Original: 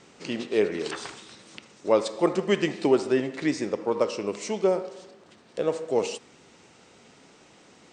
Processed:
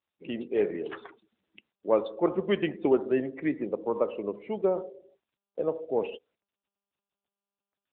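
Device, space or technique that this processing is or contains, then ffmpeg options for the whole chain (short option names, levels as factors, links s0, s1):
mobile call with aggressive noise cancelling: -af "agate=range=0.158:threshold=0.00316:ratio=16:detection=peak,highpass=120,lowpass=f=6400:w=0.5412,lowpass=f=6400:w=1.3066,afftdn=nr=32:nf=-36,volume=0.75" -ar 8000 -c:a libopencore_amrnb -b:a 10200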